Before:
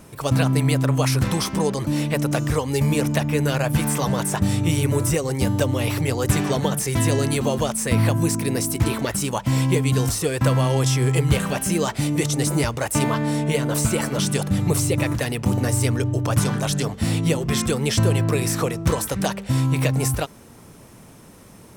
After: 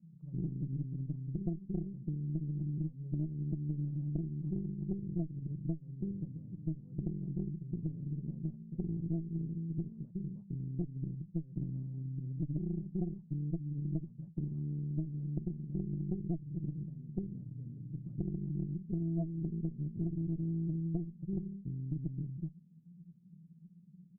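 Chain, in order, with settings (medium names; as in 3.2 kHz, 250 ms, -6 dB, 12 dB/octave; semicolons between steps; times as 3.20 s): tempo 0.9×; Butterworth band-pass 170 Hz, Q 5.5; Chebyshev shaper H 3 -26 dB, 4 -11 dB, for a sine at -15 dBFS; compression 12:1, threshold -31 dBFS, peak gain reduction 14 dB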